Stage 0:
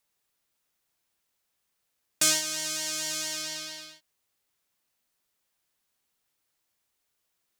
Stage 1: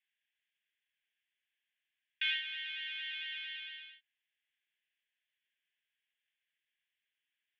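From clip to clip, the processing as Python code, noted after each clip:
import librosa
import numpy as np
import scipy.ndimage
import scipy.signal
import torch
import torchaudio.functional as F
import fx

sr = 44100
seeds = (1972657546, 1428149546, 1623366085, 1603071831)

y = scipy.signal.sosfilt(scipy.signal.cheby1(4, 1.0, [1600.0, 3400.0], 'bandpass', fs=sr, output='sos'), x)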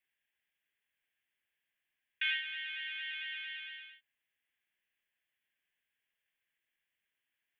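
y = fx.peak_eq(x, sr, hz=5200.0, db=-14.5, octaves=1.4)
y = y * 10.0 ** (5.5 / 20.0)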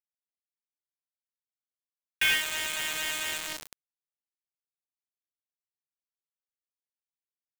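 y = fx.quant_dither(x, sr, seeds[0], bits=6, dither='none')
y = y * 10.0 ** (8.0 / 20.0)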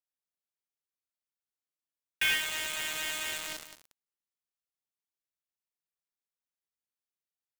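y = x + 10.0 ** (-13.0 / 20.0) * np.pad(x, (int(185 * sr / 1000.0), 0))[:len(x)]
y = y * 10.0 ** (-3.0 / 20.0)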